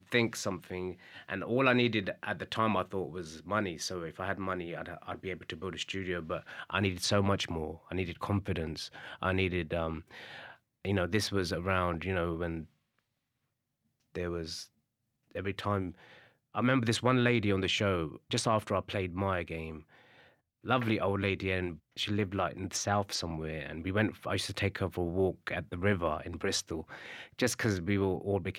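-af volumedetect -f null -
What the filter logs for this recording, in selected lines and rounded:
mean_volume: -33.5 dB
max_volume: -11.1 dB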